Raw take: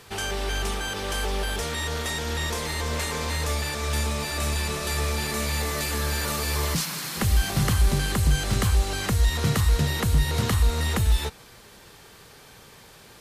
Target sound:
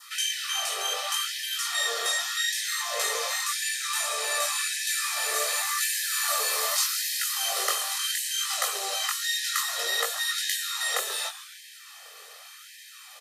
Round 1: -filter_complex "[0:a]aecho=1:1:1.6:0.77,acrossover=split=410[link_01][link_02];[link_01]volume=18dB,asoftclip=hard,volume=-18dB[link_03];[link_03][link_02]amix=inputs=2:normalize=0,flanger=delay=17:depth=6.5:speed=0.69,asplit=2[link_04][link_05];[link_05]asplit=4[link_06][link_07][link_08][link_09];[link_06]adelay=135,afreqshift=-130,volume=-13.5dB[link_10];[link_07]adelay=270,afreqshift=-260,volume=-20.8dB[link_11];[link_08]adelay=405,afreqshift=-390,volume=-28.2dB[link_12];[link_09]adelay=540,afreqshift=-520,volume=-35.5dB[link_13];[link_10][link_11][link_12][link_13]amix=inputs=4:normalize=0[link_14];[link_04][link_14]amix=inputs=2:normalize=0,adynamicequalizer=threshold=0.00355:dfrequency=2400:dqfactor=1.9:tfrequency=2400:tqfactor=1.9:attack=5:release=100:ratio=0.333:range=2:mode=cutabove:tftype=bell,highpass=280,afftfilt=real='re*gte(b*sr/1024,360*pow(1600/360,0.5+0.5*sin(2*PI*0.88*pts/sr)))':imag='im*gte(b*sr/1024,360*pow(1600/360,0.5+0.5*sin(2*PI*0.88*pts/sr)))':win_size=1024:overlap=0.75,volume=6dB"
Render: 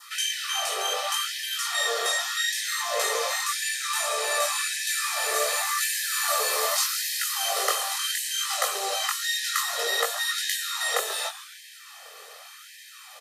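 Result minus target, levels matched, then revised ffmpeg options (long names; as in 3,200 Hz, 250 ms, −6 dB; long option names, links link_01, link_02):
500 Hz band +5.0 dB; gain into a clipping stage and back: distortion −5 dB
-filter_complex "[0:a]aecho=1:1:1.6:0.77,acrossover=split=410[link_01][link_02];[link_01]volume=24.5dB,asoftclip=hard,volume=-24.5dB[link_03];[link_03][link_02]amix=inputs=2:normalize=0,flanger=delay=17:depth=6.5:speed=0.69,asplit=2[link_04][link_05];[link_05]asplit=4[link_06][link_07][link_08][link_09];[link_06]adelay=135,afreqshift=-130,volume=-13.5dB[link_10];[link_07]adelay=270,afreqshift=-260,volume=-20.8dB[link_11];[link_08]adelay=405,afreqshift=-390,volume=-28.2dB[link_12];[link_09]adelay=540,afreqshift=-520,volume=-35.5dB[link_13];[link_10][link_11][link_12][link_13]amix=inputs=4:normalize=0[link_14];[link_04][link_14]amix=inputs=2:normalize=0,adynamicequalizer=threshold=0.00355:dfrequency=2400:dqfactor=1.9:tfrequency=2400:tqfactor=1.9:attack=5:release=100:ratio=0.333:range=2:mode=cutabove:tftype=bell,highpass=280,equalizer=frequency=580:width=0.53:gain=-5.5,afftfilt=real='re*gte(b*sr/1024,360*pow(1600/360,0.5+0.5*sin(2*PI*0.88*pts/sr)))':imag='im*gte(b*sr/1024,360*pow(1600/360,0.5+0.5*sin(2*PI*0.88*pts/sr)))':win_size=1024:overlap=0.75,volume=6dB"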